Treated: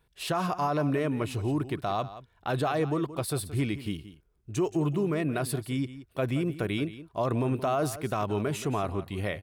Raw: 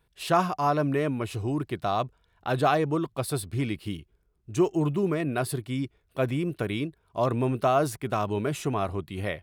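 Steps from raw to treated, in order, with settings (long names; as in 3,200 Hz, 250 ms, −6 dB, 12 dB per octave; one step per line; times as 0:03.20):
brickwall limiter −19.5 dBFS, peak gain reduction 9.5 dB
single-tap delay 175 ms −14.5 dB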